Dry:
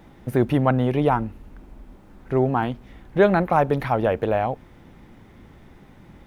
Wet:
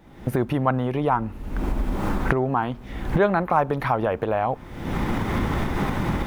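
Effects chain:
camcorder AGC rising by 51 dB per second
dynamic equaliser 1,100 Hz, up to +7 dB, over −36 dBFS, Q 1.6
level −4.5 dB

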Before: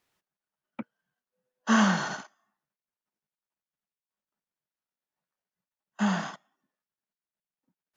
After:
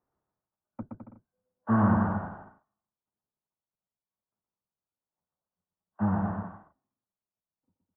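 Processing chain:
sub-octave generator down 1 octave, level −4 dB
low-pass filter 1,200 Hz 24 dB per octave
bouncing-ball delay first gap 120 ms, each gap 0.75×, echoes 5
level −2 dB

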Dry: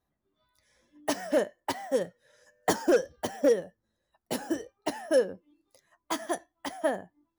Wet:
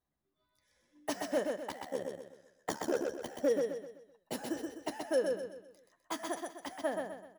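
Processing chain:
0:01.55–0:03.38: amplitude modulation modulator 72 Hz, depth 70%
on a send: repeating echo 127 ms, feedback 39%, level −4 dB
on the sum: level −7 dB

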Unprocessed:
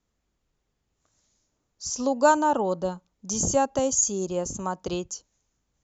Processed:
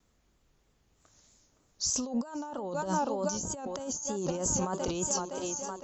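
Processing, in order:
feedback echo with a high-pass in the loop 513 ms, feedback 64%, high-pass 150 Hz, level −14.5 dB
pitch vibrato 3.2 Hz 66 cents
compressor whose output falls as the input rises −34 dBFS, ratio −1

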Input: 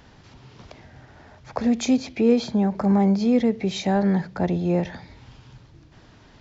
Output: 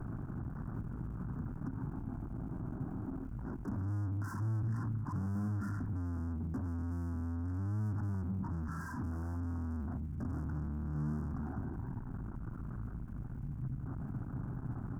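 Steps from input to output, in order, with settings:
high-shelf EQ 2,800 Hz −10 dB
wrong playback speed 78 rpm record played at 33 rpm
upward compression, threshold −35 dBFS
tube saturation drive 47 dB, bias 0.8
elliptic band-stop filter 1,500–5,100 Hz, stop band 40 dB
surface crackle 380 per second −66 dBFS
octave-band graphic EQ 125/250/500/1,000/2,000/4,000 Hz +11/+11/−10/+3/+6/−11 dB
level +4 dB

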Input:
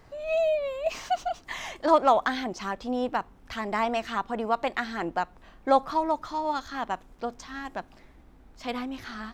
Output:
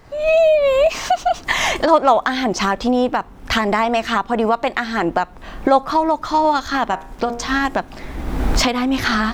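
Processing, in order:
camcorder AGC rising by 36 dB per second
0:06.89–0:07.56: hum removal 78.87 Hz, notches 34
level +7 dB

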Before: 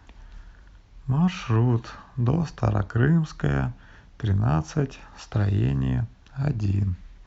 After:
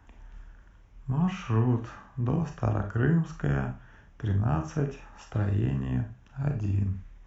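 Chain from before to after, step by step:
parametric band 4,300 Hz −14.5 dB 0.49 octaves
four-comb reverb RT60 0.32 s, combs from 28 ms, DRR 5 dB
level −5 dB

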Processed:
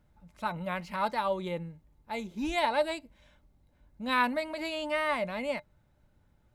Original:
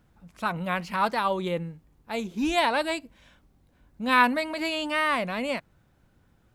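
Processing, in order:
low-shelf EQ 97 Hz +8 dB
hollow resonant body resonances 600/870/2,100/3,900 Hz, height 11 dB, ringing for 90 ms
level −7.5 dB

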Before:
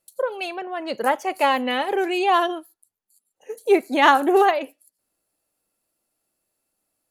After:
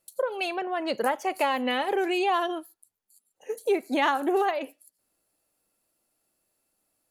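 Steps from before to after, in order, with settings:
downward compressor 3 to 1, threshold −25 dBFS, peak gain reduction 11.5 dB
level +1 dB

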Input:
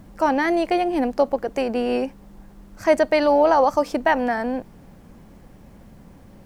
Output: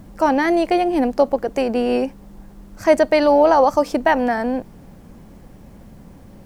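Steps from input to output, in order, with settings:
parametric band 1,800 Hz −2.5 dB 2.5 octaves
level +4 dB

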